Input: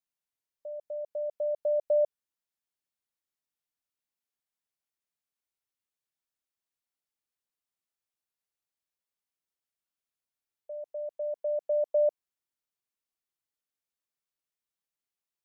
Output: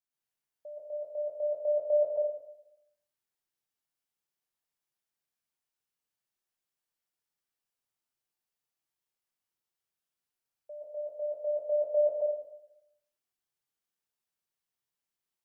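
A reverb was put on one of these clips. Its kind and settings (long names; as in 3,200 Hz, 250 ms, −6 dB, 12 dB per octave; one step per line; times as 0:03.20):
dense smooth reverb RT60 0.83 s, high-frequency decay 0.85×, pre-delay 105 ms, DRR −5.5 dB
level −5 dB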